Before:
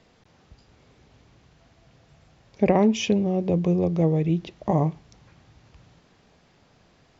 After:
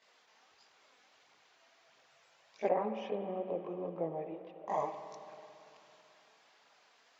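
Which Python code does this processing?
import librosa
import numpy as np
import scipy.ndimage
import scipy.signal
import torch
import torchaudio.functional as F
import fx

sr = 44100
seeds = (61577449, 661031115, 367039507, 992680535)

y = fx.lowpass(x, sr, hz=1000.0, slope=12, at=(2.67, 4.68))
y = fx.chorus_voices(y, sr, voices=2, hz=0.75, base_ms=20, depth_ms=2.3, mix_pct=65)
y = scipy.signal.sosfilt(scipy.signal.butter(2, 790.0, 'highpass', fs=sr, output='sos'), y)
y = fx.rev_spring(y, sr, rt60_s=3.1, pass_ms=(50, 55), chirp_ms=65, drr_db=8.0)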